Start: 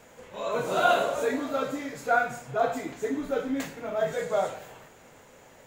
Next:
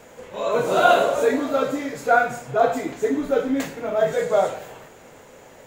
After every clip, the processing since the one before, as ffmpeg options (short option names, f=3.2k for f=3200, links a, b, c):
-af "equalizer=f=440:w=0.96:g=3.5,volume=5dB"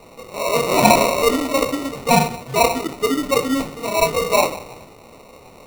-af "acrusher=samples=27:mix=1:aa=0.000001,volume=2.5dB"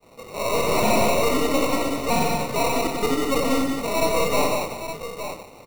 -af "agate=range=-33dB:threshold=-39dB:ratio=3:detection=peak,aeval=exprs='(tanh(8.91*val(0)+0.55)-tanh(0.55))/8.91':c=same,aecho=1:1:89|184|867:0.501|0.631|0.355"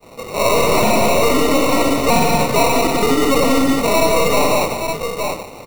-af "alimiter=level_in=14.5dB:limit=-1dB:release=50:level=0:latency=1,volume=-4.5dB"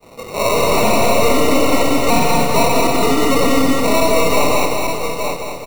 -af "aecho=1:1:215|430|645|860|1075|1290|1505:0.501|0.271|0.146|0.0789|0.0426|0.023|0.0124,volume=-1dB"